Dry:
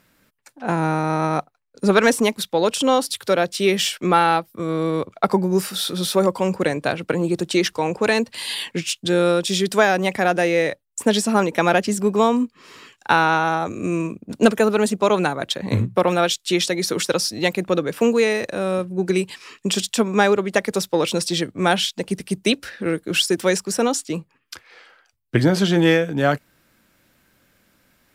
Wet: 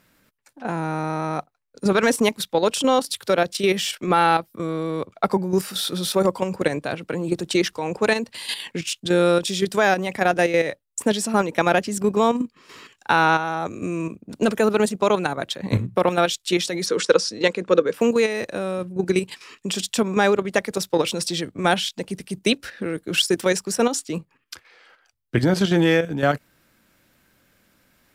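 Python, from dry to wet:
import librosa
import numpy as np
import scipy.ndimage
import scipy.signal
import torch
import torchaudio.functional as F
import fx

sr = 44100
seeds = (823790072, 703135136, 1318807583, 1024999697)

y = fx.level_steps(x, sr, step_db=9)
y = fx.cabinet(y, sr, low_hz=120.0, low_slope=12, high_hz=8200.0, hz=(150.0, 470.0, 730.0, 1100.0, 1500.0), db=(-7, 10, -7, 3, 4), at=(16.86, 17.94))
y = y * librosa.db_to_amplitude(1.5)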